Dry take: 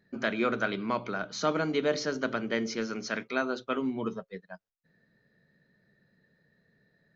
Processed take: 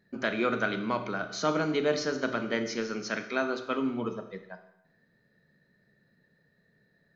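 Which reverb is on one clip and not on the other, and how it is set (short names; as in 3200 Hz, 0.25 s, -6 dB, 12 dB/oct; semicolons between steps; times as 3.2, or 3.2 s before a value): Schroeder reverb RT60 0.87 s, combs from 26 ms, DRR 8.5 dB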